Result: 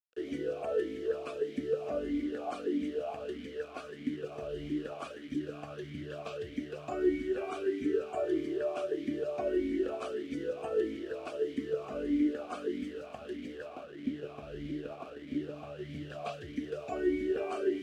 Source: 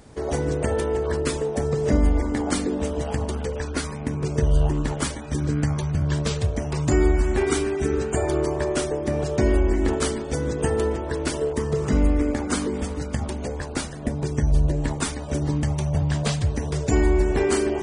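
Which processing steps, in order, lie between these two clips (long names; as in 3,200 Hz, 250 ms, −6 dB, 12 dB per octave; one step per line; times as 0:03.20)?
0:13.70–0:15.90: running median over 25 samples
bit-depth reduction 6 bits, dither none
formant filter swept between two vowels a-i 1.6 Hz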